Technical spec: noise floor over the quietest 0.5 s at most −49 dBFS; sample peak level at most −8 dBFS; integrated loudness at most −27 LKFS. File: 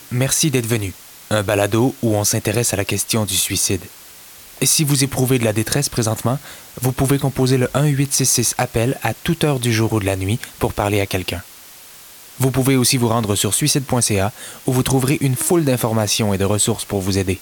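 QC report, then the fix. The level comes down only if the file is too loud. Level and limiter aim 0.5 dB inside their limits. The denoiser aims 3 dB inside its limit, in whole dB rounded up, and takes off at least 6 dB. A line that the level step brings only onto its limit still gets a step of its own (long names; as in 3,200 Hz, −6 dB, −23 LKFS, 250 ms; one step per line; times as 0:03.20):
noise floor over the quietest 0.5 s −41 dBFS: out of spec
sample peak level −3.5 dBFS: out of spec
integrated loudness −17.5 LKFS: out of spec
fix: level −10 dB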